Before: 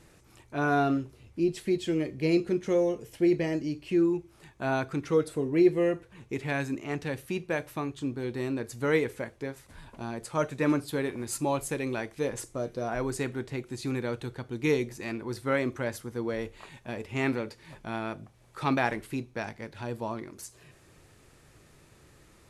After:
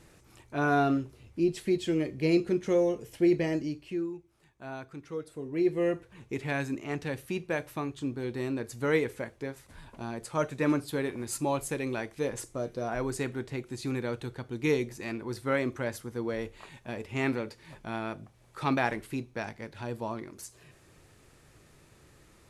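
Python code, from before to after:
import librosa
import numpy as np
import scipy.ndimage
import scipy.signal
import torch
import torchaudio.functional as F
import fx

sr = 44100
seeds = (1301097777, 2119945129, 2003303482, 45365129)

y = fx.gain(x, sr, db=fx.line((3.61, 0.0), (4.16, -12.0), (5.23, -12.0), (5.9, -1.0)))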